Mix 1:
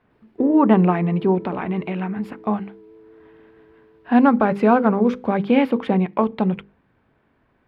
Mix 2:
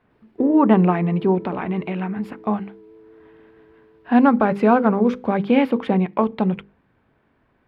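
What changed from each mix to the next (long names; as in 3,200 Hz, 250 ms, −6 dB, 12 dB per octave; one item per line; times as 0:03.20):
nothing changed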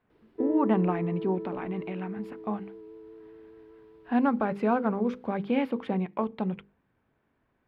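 speech −10.0 dB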